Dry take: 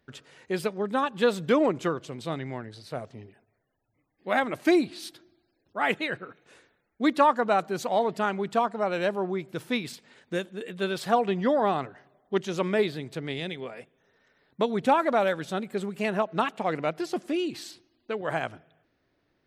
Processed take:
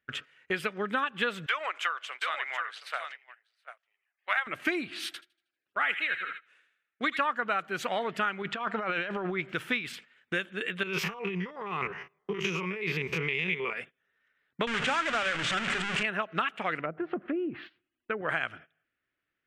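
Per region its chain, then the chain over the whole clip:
1.46–4.47 HPF 710 Hz 24 dB/oct + echo 0.726 s -11 dB
5.06–7.19 HPF 460 Hz 6 dB/oct + thin delay 79 ms, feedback 46%, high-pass 1900 Hz, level -6.5 dB
8.42–9.54 running mean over 4 samples + negative-ratio compressor -32 dBFS
10.83–13.73 stepped spectrum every 50 ms + negative-ratio compressor -36 dBFS + ripple EQ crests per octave 0.79, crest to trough 13 dB
14.67–16.03 delta modulation 64 kbps, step -21 dBFS + steep low-pass 8400 Hz + notches 50/100/150/200/250/300/350/400 Hz
16.81–18.29 treble ducked by the level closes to 660 Hz, closed at -25.5 dBFS + air absorption 360 m + decimation joined by straight lines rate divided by 2×
whole clip: gate -49 dBFS, range -19 dB; band shelf 2000 Hz +13.5 dB; compressor 4:1, threshold -28 dBFS

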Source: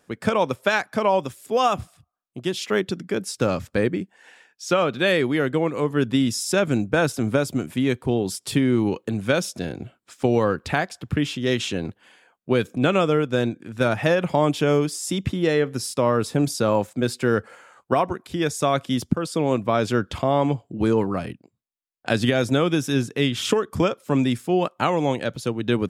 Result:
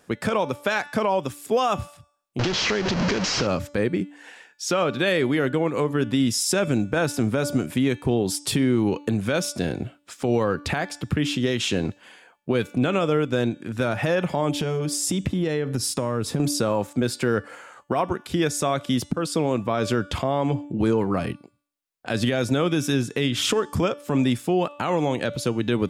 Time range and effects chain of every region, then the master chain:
2.39–3.47 delta modulation 32 kbps, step -20 dBFS + notch 3600 Hz, Q 17 + compressor 3:1, threshold -25 dBFS
14.54–16.4 low shelf 220 Hz +8 dB + compressor 5:1, threshold -25 dBFS
whole clip: de-hum 290.3 Hz, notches 32; compressor 2:1, threshold -25 dBFS; limiter -17 dBFS; gain +5 dB

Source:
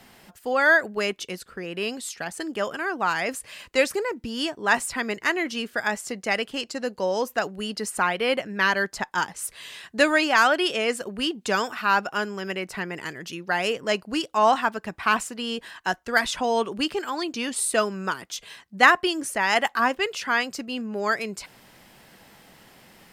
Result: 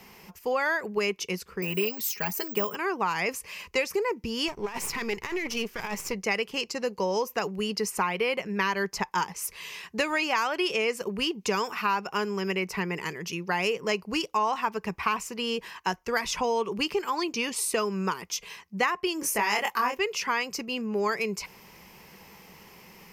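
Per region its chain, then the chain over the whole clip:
1.62–2.75 comb 4.8 ms, depth 63% + careless resampling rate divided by 2×, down none, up zero stuff
4.48–6.14 half-wave gain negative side -12 dB + negative-ratio compressor -31 dBFS
19.2–19.99 high shelf 10000 Hz +9.5 dB + doubler 24 ms -3 dB
whole clip: ripple EQ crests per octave 0.8, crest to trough 9 dB; compressor 6:1, threshold -23 dBFS

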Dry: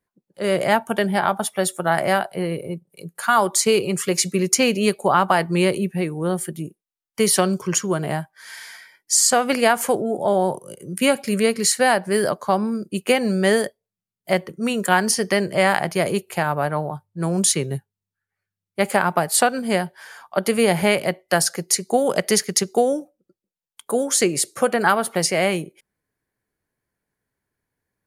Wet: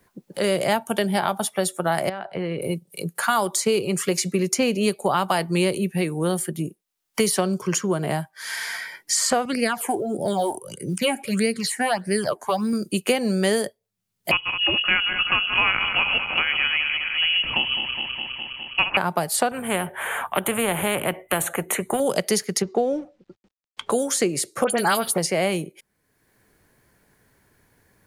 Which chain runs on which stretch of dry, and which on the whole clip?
2.09–2.62 LPF 2500 Hz + compressor 4:1, threshold -29 dBFS
9.45–12.73 LPF 11000 Hz + phaser stages 8, 1.6 Hz, lowest notch 150–1100 Hz + short-mantissa float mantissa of 6-bit
14.31–18.97 regenerating reverse delay 0.103 s, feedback 75%, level -9 dB + inverted band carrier 3100 Hz
19.51–22 Butterworth band-stop 5000 Hz, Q 0.82 + high shelf 4800 Hz -6 dB + spectral compressor 2:1
22.62–23.92 G.711 law mismatch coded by mu + air absorption 160 m
24.64–25.18 high shelf 3300 Hz +11 dB + dispersion highs, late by 63 ms, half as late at 2800 Hz
whole clip: dynamic EQ 1700 Hz, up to -4 dB, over -31 dBFS, Q 1.3; three-band squash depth 70%; gain -1.5 dB

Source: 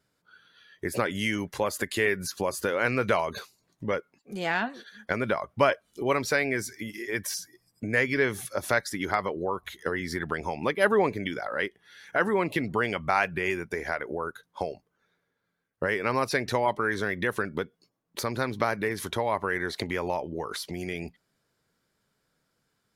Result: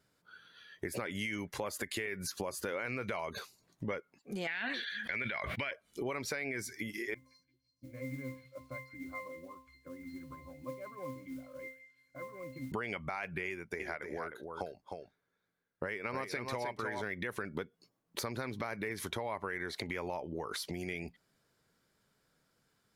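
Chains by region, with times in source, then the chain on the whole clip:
4.47–5.71 band shelf 2600 Hz +14 dB + sustainer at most 72 dB/s
7.14–12.72 octave resonator C, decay 0.37 s + modulation noise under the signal 22 dB + delay with a stepping band-pass 0.169 s, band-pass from 2200 Hz, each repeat 0.7 oct, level -9.5 dB
13.49–17.03 echo 0.307 s -6 dB + upward expander, over -35 dBFS
whole clip: dynamic EQ 2200 Hz, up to +7 dB, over -47 dBFS, Q 6.1; limiter -17 dBFS; compressor 3:1, threshold -37 dBFS

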